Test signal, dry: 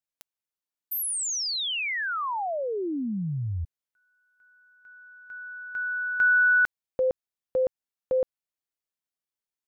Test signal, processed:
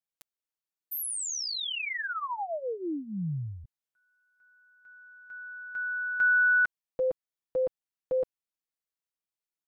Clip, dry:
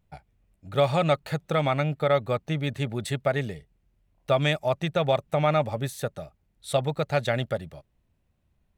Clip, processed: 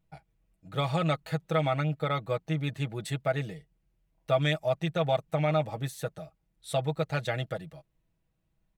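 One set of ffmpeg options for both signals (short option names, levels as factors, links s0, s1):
-af "aecho=1:1:6.2:0.68,volume=0.501"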